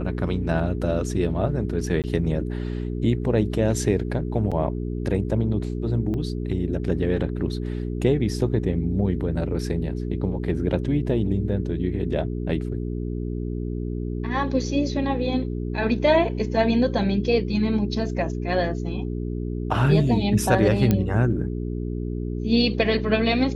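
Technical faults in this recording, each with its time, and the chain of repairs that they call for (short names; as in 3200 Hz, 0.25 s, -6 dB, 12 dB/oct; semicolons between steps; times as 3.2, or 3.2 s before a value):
hum 60 Hz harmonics 7 -28 dBFS
2.02–2.04 gap 18 ms
4.51–4.52 gap 6 ms
6.14–6.15 gap 5.2 ms
20.91 pop -8 dBFS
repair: de-click; de-hum 60 Hz, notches 7; interpolate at 2.02, 18 ms; interpolate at 4.51, 6 ms; interpolate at 6.14, 5.2 ms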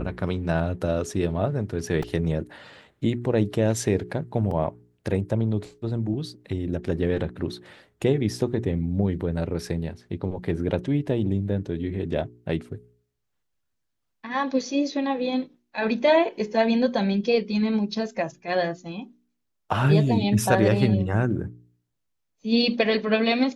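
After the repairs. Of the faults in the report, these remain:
none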